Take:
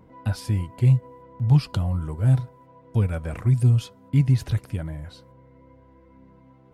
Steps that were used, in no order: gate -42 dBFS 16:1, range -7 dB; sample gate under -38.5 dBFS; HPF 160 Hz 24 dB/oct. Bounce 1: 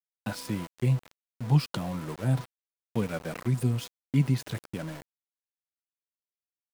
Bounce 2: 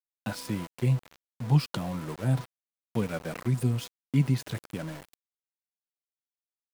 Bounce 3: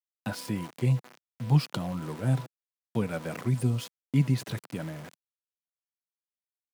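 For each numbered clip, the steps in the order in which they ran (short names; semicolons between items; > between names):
HPF > gate > sample gate; gate > HPF > sample gate; gate > sample gate > HPF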